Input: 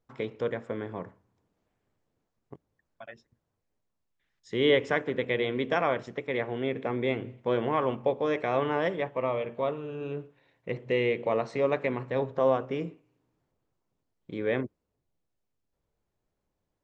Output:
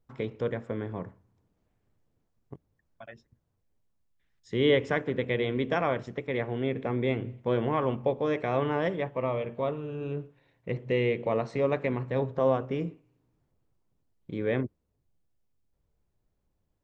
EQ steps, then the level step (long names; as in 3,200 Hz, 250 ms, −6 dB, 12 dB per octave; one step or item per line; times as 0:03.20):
low-shelf EQ 190 Hz +10.5 dB
−2.0 dB